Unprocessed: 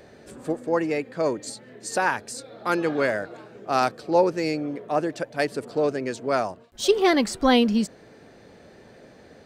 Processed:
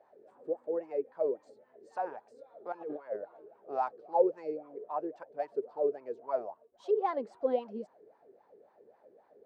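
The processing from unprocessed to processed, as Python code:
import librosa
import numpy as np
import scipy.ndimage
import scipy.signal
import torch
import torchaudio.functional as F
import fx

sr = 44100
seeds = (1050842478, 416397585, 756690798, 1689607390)

y = fx.over_compress(x, sr, threshold_db=-27.0, ratio=-0.5, at=(2.72, 3.16))
y = fx.wah_lfo(y, sr, hz=3.7, low_hz=390.0, high_hz=1000.0, q=8.3)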